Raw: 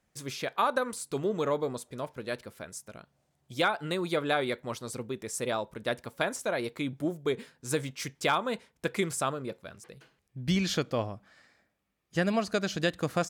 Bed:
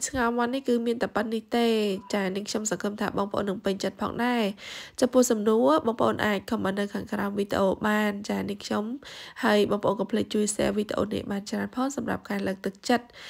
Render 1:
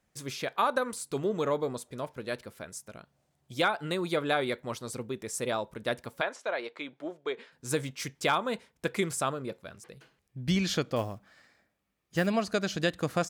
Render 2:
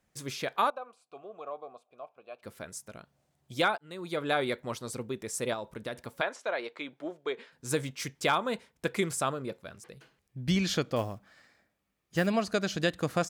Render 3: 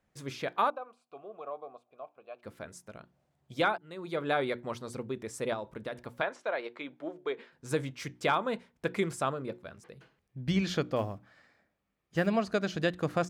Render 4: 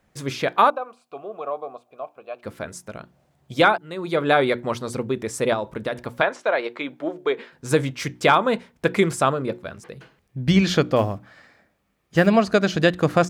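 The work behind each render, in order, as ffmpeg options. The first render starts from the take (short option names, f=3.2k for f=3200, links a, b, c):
-filter_complex "[0:a]asplit=3[a][b][c];[a]afade=t=out:st=6.2:d=0.02[d];[b]highpass=490,lowpass=3.9k,afade=t=in:st=6.2:d=0.02,afade=t=out:st=7.51:d=0.02[e];[c]afade=t=in:st=7.51:d=0.02[f];[d][e][f]amix=inputs=3:normalize=0,asettb=1/sr,asplit=3[g][h][i];[g]atrim=end=10.964[j];[h]atrim=start=10.96:end=12.27,asetpts=PTS-STARTPTS,afade=t=in:d=0.004:c=qsin,afade=t=out:st=1.306:d=0.004:c=qsin,acrusher=bits=6:mode=log:mix=0:aa=0.000001[k];[i]atrim=start=12.266[l];[j][k]acrossfade=d=0.004:c1=hsin:c2=qsin[m];[m][l]acrossfade=d=0.004:c1=qsin:c2=hsin"
-filter_complex "[0:a]asplit=3[a][b][c];[a]afade=t=out:st=0.69:d=0.02[d];[b]asplit=3[e][f][g];[e]bandpass=f=730:t=q:w=8,volume=0dB[h];[f]bandpass=f=1.09k:t=q:w=8,volume=-6dB[i];[g]bandpass=f=2.44k:t=q:w=8,volume=-9dB[j];[h][i][j]amix=inputs=3:normalize=0,afade=t=in:st=0.69:d=0.02,afade=t=out:st=2.42:d=0.02[k];[c]afade=t=in:st=2.42:d=0.02[l];[d][k][l]amix=inputs=3:normalize=0,asettb=1/sr,asplit=3[m][n][o];[m]atrim=end=5.534[p];[n]atrim=start=5.53:end=6.09,asetpts=PTS-STARTPTS,afade=t=in:d=0.004:c=qsin,afade=t=out:st=0.556:d=0.004:c=qsin,acompressor=threshold=-32dB:ratio=5:attack=3.2:release=140:knee=1:detection=peak[q];[o]atrim=start=6.086[r];[p][q]acrossfade=d=0.004:c1=hsin:c2=qsin[s];[s][r]acrossfade=d=0.004:c1=qsin:c2=hsin,asplit=2[t][u];[t]atrim=end=3.78,asetpts=PTS-STARTPTS,afade=t=out:st=3.776:d=0.004:c=hsin[v];[u]atrim=start=3.78,asetpts=PTS-STARTPTS,afade=t=in:d=0.59[w];[v][w]concat=n=2:v=0:a=1"
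-af "highshelf=f=4.3k:g=-11.5,bandreject=f=60:t=h:w=6,bandreject=f=120:t=h:w=6,bandreject=f=180:t=h:w=6,bandreject=f=240:t=h:w=6,bandreject=f=300:t=h:w=6,bandreject=f=360:t=h:w=6"
-af "volume=11.5dB"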